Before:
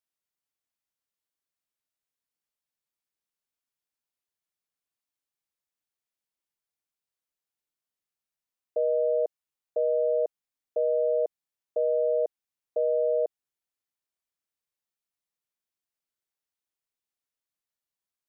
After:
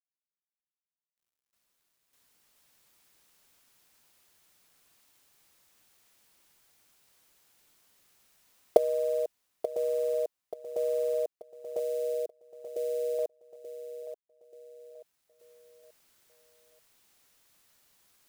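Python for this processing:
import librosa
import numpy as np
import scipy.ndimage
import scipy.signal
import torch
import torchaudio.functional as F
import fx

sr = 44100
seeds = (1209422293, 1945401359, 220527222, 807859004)

y = fx.recorder_agc(x, sr, target_db=-26.0, rise_db_per_s=10.0, max_gain_db=30)
y = fx.quant_companded(y, sr, bits=6)
y = fx.fixed_phaser(y, sr, hz=380.0, stages=4, at=(11.79, 13.19))
y = fx.echo_feedback(y, sr, ms=883, feedback_pct=37, wet_db=-11)
y = F.gain(torch.from_numpy(y), -4.0).numpy()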